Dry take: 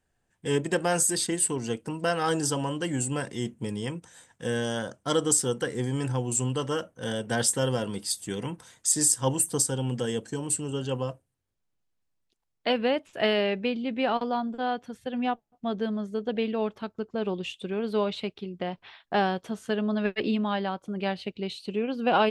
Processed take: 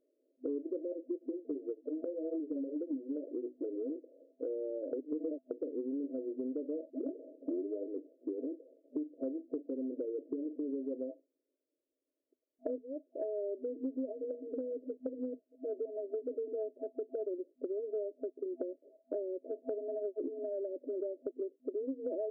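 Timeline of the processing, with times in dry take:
0.92–3.96 s: cancelling through-zero flanger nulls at 1.8 Hz, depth 6.3 ms
4.93–5.51 s: reverse
6.90 s: tape start 0.99 s
12.78–13.56 s: fade in quadratic, from -18.5 dB
whole clip: FFT band-pass 250–660 Hz; dynamic bell 510 Hz, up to -8 dB, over -42 dBFS, Q 1.6; compression, threshold -43 dBFS; trim +8 dB

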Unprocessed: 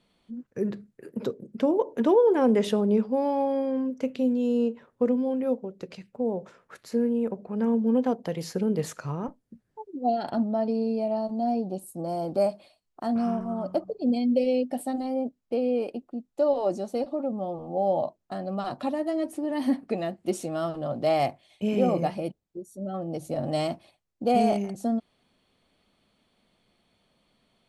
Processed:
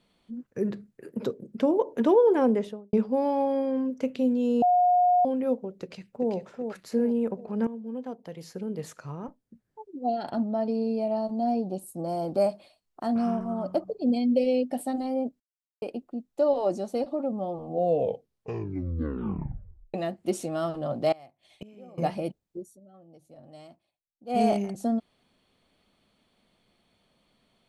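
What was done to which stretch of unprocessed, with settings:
2.33–2.93 s: studio fade out
4.62–5.25 s: bleep 718 Hz -17.5 dBFS
5.81–6.33 s: echo throw 390 ms, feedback 45%, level -6 dB
7.67–11.25 s: fade in, from -15 dB
15.40–15.82 s: mute
17.60 s: tape stop 2.34 s
21.12–21.98 s: inverted gate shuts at -29 dBFS, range -25 dB
22.65–24.42 s: dip -21 dB, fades 0.15 s

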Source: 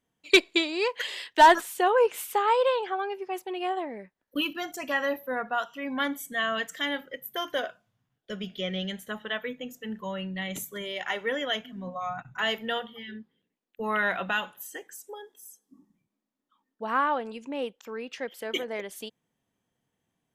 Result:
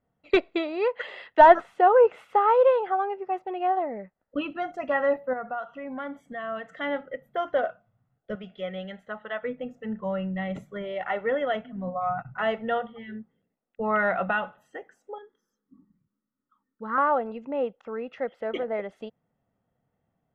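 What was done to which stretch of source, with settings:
5.33–6.69 s: compression 2:1, threshold -39 dBFS
8.35–9.43 s: bass shelf 420 Hz -12 dB
15.18–16.98 s: static phaser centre 2.6 kHz, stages 6
whole clip: low-pass 1.3 kHz 12 dB/octave; comb 1.5 ms, depth 43%; trim +4.5 dB

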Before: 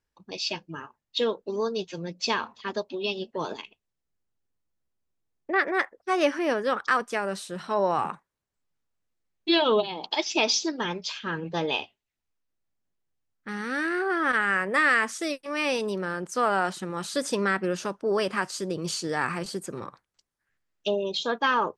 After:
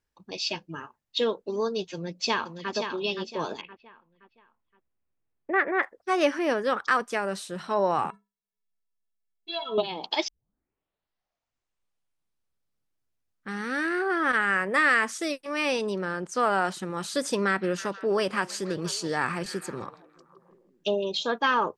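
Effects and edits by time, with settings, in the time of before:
1.93–2.72 s: echo throw 520 ms, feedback 35%, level -7 dB
3.61–5.83 s: low-pass 2.8 kHz 24 dB/octave
8.10–9.78 s: inharmonic resonator 200 Hz, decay 0.26 s, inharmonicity 0.03
10.28 s: tape start 3.32 s
15.72–16.40 s: low-pass 8.7 kHz
17.32–21.27 s: repeats whose band climbs or falls 161 ms, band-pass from 3.1 kHz, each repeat -0.7 oct, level -11.5 dB

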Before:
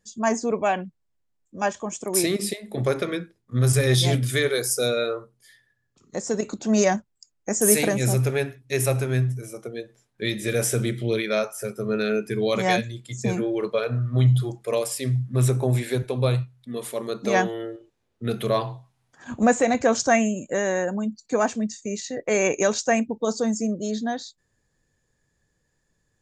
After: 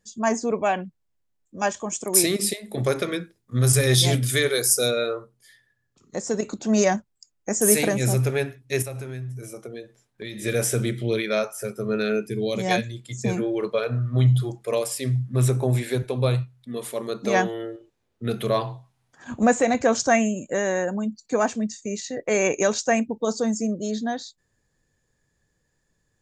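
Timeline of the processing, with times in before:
1.60–4.91 s: treble shelf 4.4 kHz +7 dB
8.82–10.42 s: compression 5:1, threshold -31 dBFS
12.26–12.71 s: peaking EQ 1.3 kHz -13 dB 1.6 oct

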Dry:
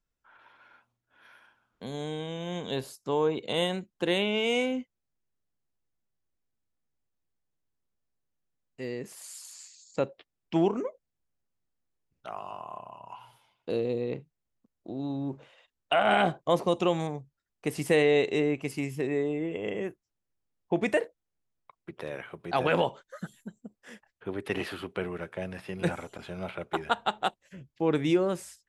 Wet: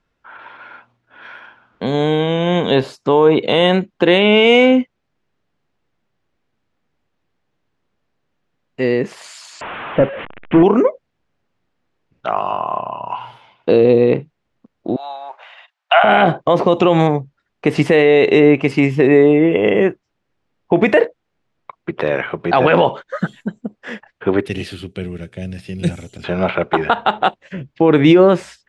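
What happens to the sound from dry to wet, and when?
9.61–10.63 s: one-bit delta coder 16 kbps, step -41 dBFS
14.96–16.04 s: elliptic high-pass 700 Hz, stop band 80 dB
24.46–26.24 s: FFT filter 100 Hz 0 dB, 710 Hz -21 dB, 1 kHz -29 dB, 8.7 kHz +10 dB
whole clip: low-pass 3.1 kHz 12 dB/octave; bass shelf 76 Hz -11 dB; loudness maximiser +21 dB; trim -1 dB

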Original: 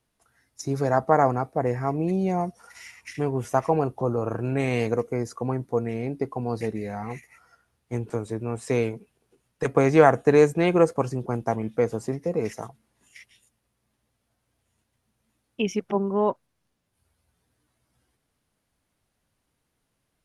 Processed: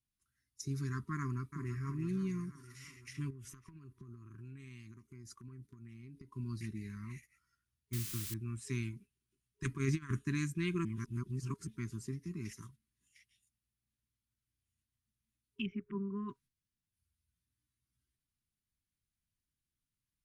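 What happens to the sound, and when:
1.19–1.85 s: echo throw 330 ms, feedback 65%, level -9 dB
3.30–6.32 s: compression 8:1, threshold -35 dBFS
7.93–8.34 s: word length cut 6-bit, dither triangular
9.64–10.19 s: compressor with a negative ratio -20 dBFS, ratio -0.5
10.85–11.67 s: reverse
15.66–16.29 s: low-pass 2 kHz 24 dB/octave
whole clip: gate -44 dBFS, range -7 dB; FFT band-reject 410–960 Hz; amplifier tone stack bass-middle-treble 6-0-2; trim +7 dB

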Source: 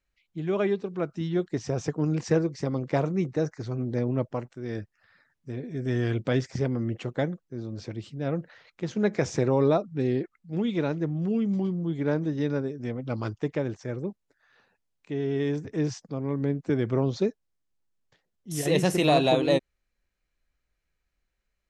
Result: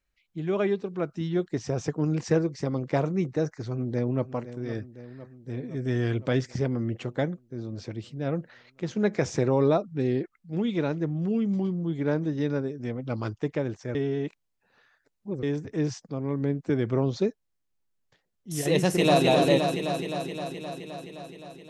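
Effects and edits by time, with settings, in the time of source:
3.67–4.24 s: echo throw 510 ms, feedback 70%, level -13.5 dB
13.95–15.43 s: reverse
18.72–19.24 s: echo throw 260 ms, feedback 75%, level -4 dB

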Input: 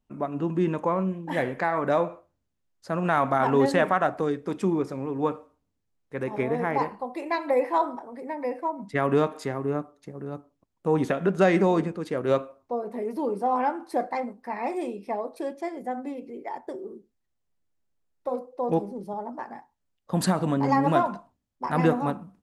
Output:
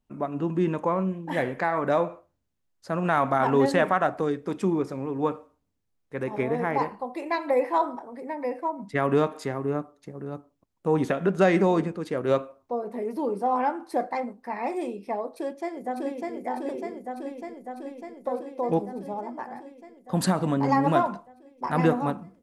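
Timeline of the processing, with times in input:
15.26–16.33 s: echo throw 600 ms, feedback 75%, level -1.5 dB

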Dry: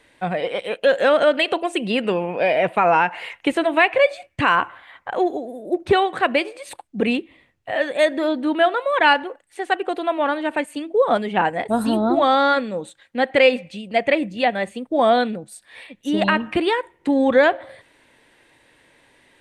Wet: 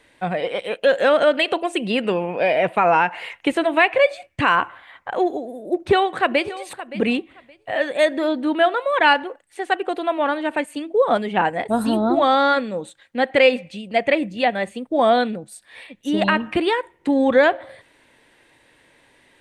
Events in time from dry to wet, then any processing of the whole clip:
5.74–6.60 s: echo throw 570 ms, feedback 20%, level -15.5 dB

